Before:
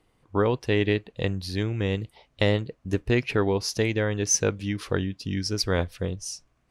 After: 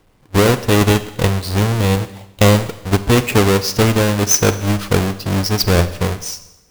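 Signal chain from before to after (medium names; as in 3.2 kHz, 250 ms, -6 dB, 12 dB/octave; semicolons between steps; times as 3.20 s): square wave that keeps the level; Schroeder reverb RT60 0.95 s, combs from 31 ms, DRR 12.5 dB; trim +6 dB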